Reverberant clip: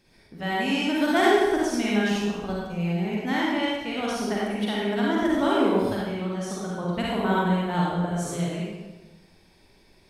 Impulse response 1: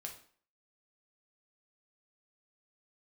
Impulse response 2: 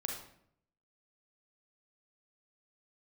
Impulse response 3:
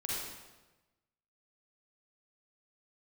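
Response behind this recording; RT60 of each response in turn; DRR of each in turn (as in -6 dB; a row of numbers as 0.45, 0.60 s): 3; 0.50, 0.65, 1.1 s; 1.0, 0.5, -5.5 dB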